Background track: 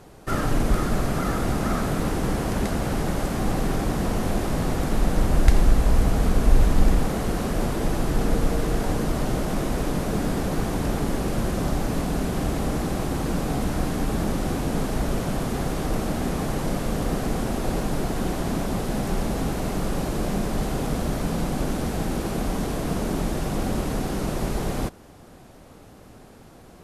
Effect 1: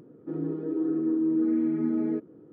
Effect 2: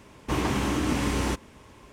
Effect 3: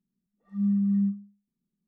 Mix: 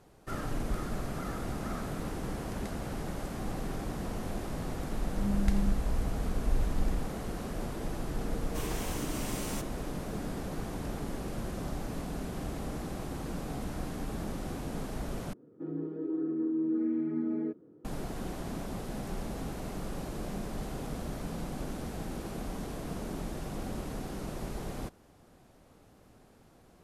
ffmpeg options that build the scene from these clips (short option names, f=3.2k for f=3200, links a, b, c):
-filter_complex "[0:a]volume=-12dB[a];[3:a]lowpass=f=350:t=q:w=4.9[b];[2:a]aemphasis=mode=production:type=75fm[c];[a]asplit=2[d][e];[d]atrim=end=15.334[f];[1:a]atrim=end=2.52,asetpts=PTS-STARTPTS,volume=-5.5dB[g];[e]atrim=start=17.846[h];[b]atrim=end=1.87,asetpts=PTS-STARTPTS,volume=-12dB,afade=t=in:d=0.004:c=hsin,afade=t=out:st=1.866:d=0.004:c=hsin,adelay=203301S[i];[c]atrim=end=1.92,asetpts=PTS-STARTPTS,volume=-14dB,afade=t=in:d=0.004:c=hsin,afade=t=out:st=1.916:d=0.004:c=hsin,adelay=364266S[j];[f][g]acrossfade=d=0.004:c1=hsin:c2=hsin[k];[k][h]acrossfade=d=0.004:c1=hsin:c2=hsin[l];[l][i][j]amix=inputs=3:normalize=0"